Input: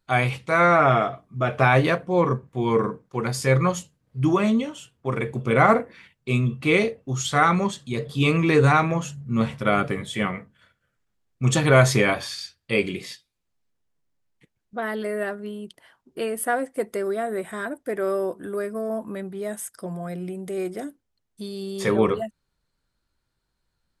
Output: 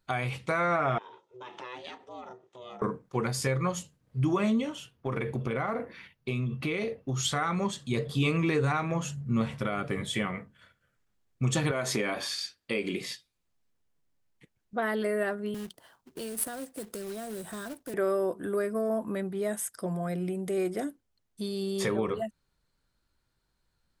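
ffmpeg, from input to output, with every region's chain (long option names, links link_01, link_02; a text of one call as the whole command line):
ffmpeg -i in.wav -filter_complex "[0:a]asettb=1/sr,asplit=3[link_01][link_02][link_03];[link_01]atrim=end=0.984[link_04];[link_02]atrim=start=0.98:end=2.82,asetpts=PTS-STARTPTS,afade=type=in:duration=0.004:curve=qsin,afade=type=out:start_time=1.836:duration=0.004:curve=qsin,acompressor=threshold=-33dB:ratio=4:attack=3.2:release=140:knee=1:detection=peak,aeval=exprs='val(0)*sin(2*PI*250*n/s)':channel_layout=same,highpass=420,equalizer=frequency=430:width_type=q:width=4:gain=-6,equalizer=frequency=700:width_type=q:width=4:gain=-8,equalizer=frequency=1500:width_type=q:width=4:gain=-10,equalizer=frequency=2200:width_type=q:width=4:gain=-5,equalizer=frequency=3400:width_type=q:width=4:gain=7,equalizer=frequency=6100:width_type=q:width=4:gain=5,lowpass=frequency=7700:width=0.5412,lowpass=frequency=7700:width=1.3066[link_05];[link_03]atrim=start=2.816[link_06];[link_04][link_05]acrossfade=duration=0.004:curve1=hsin:curve2=qsin[link_07];[link_07][link_06]acrossfade=duration=0.004:curve1=qsin:curve2=hsin,asettb=1/sr,asplit=3[link_08][link_09][link_10];[link_08]atrim=end=4.754[link_11];[link_09]atrim=start=4.75:end=7.23,asetpts=PTS-STARTPTS,afade=type=in:duration=0.004:curve=qsin,afade=type=out:start_time=2.476:duration=0.004:curve=qsin,equalizer=frequency=7800:width=3.3:gain=-10,acompressor=threshold=-26dB:ratio=10:attack=3.2:release=140:knee=1:detection=peak[link_12];[link_10]atrim=start=7.226[link_13];[link_11][link_12]acrossfade=duration=0.004:curve1=hsin:curve2=qsin[link_14];[link_14][link_13]acrossfade=duration=0.004:curve1=qsin:curve2=hsin,asettb=1/sr,asplit=3[link_15][link_16][link_17];[link_15]atrim=end=11.714[link_18];[link_16]atrim=start=11.71:end=13.01,asetpts=PTS-STARTPTS,afade=type=in:duration=0.004:curve=qsin,afade=type=out:start_time=1.296:duration=0.004:curve=qsin,lowshelf=frequency=170:width_type=q:width=1.5:gain=-9,acompressor=threshold=-24dB:ratio=2:attack=3.2:release=140:knee=1:detection=peak[link_19];[link_17]atrim=start=13.006[link_20];[link_18][link_19]acrossfade=duration=0.004:curve1=hsin:curve2=qsin[link_21];[link_21][link_20]acrossfade=duration=0.004:curve1=qsin:curve2=hsin,asettb=1/sr,asplit=3[link_22][link_23][link_24];[link_22]atrim=end=15.544[link_25];[link_23]atrim=start=15.54:end=17.94,asetpts=PTS-STARTPTS,afade=type=in:duration=0.004:curve=qsin,afade=type=out:start_time=2.396:duration=0.004:curve=qsin,equalizer=frequency=2200:width=3:gain=-15,acrossover=split=180|3000[link_26][link_27][link_28];[link_27]acompressor=threshold=-38dB:ratio=10:attack=3.2:release=140:knee=2.83:detection=peak[link_29];[link_26][link_29][link_28]amix=inputs=3:normalize=0,acrusher=bits=2:mode=log:mix=0:aa=0.000001[link_30];[link_24]atrim=start=17.936[link_31];[link_25][link_30]acrossfade=duration=0.004:curve1=hsin:curve2=qsin[link_32];[link_32][link_31]acrossfade=duration=0.004:curve1=qsin:curve2=hsin,acompressor=threshold=-25dB:ratio=2.5,alimiter=limit=-17.5dB:level=0:latency=1:release=367" out.wav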